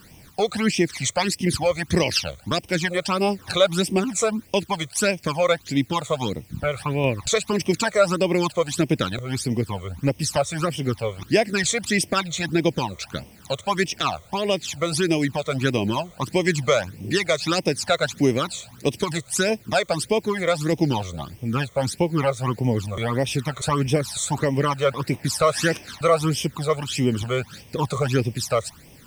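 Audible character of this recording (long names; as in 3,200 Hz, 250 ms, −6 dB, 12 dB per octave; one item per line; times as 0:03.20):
a quantiser's noise floor 10 bits, dither triangular
phaser sweep stages 12, 1.6 Hz, lowest notch 270–1,400 Hz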